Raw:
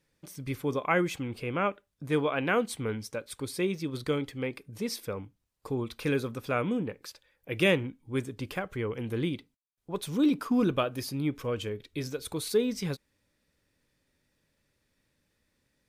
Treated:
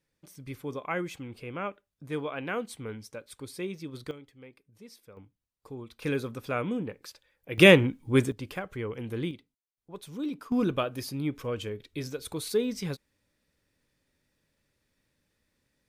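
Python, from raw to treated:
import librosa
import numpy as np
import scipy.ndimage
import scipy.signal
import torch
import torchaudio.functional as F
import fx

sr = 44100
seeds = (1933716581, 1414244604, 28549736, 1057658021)

y = fx.gain(x, sr, db=fx.steps((0.0, -6.0), (4.11, -17.0), (5.17, -9.5), (6.02, -1.5), (7.58, 8.5), (8.32, -2.0), (9.31, -9.0), (10.52, -1.0)))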